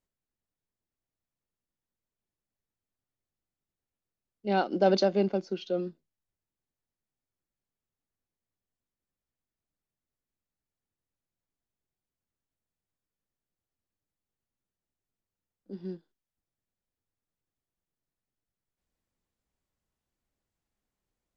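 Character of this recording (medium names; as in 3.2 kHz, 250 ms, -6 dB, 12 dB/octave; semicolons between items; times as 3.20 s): noise floor -92 dBFS; spectral tilt -5.0 dB/octave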